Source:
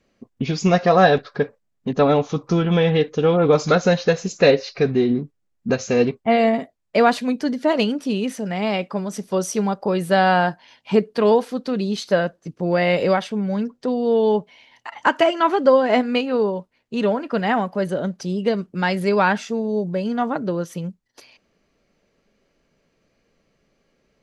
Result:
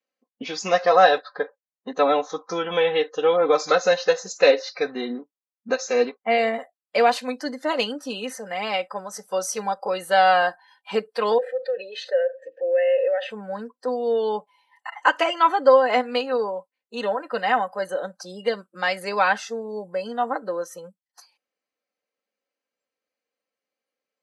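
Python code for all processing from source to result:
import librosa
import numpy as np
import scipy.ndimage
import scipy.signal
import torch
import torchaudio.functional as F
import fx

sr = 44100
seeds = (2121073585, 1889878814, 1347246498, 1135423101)

y = fx.chain(x, sr, fx.vowel_filter(vowel='e'),
    fx.air_absorb(metres=54.0),
    fx.env_flatten(amount_pct=50), at=(11.38, 13.3))
y = scipy.signal.sosfilt(scipy.signal.butter(2, 520.0, 'highpass', fs=sr, output='sos'), y)
y = fx.noise_reduce_blind(y, sr, reduce_db=18)
y = y + 0.59 * np.pad(y, (int(3.9 * sr / 1000.0), 0))[:len(y)]
y = F.gain(torch.from_numpy(y), -1.0).numpy()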